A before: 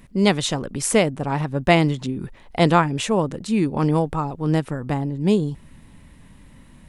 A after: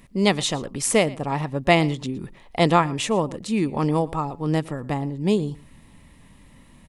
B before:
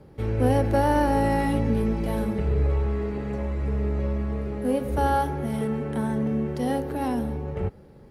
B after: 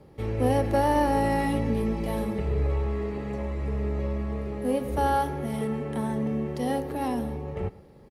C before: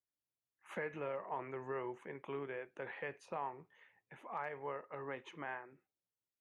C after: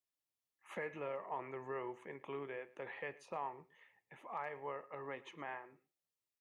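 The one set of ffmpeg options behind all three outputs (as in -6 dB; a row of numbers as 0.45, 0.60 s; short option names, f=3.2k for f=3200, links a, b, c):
-af "lowshelf=f=340:g=-4,bandreject=f=1.5k:w=7.5,aecho=1:1:115:0.0891"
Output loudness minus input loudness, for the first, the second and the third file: -1.5, -2.0, -1.0 LU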